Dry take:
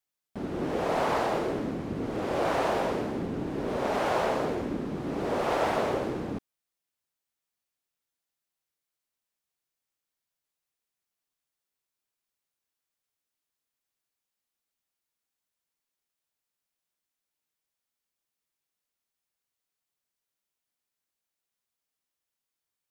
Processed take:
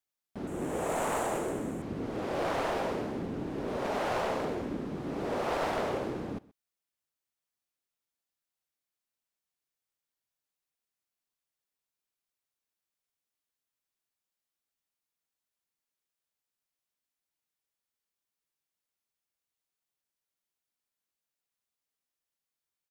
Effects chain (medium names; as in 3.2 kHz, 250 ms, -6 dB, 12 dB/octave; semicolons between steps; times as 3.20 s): one-sided wavefolder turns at -22.5 dBFS; 0.47–1.82 s: resonant high shelf 6.2 kHz +8.5 dB, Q 3; delay 127 ms -22.5 dB; trim -3.5 dB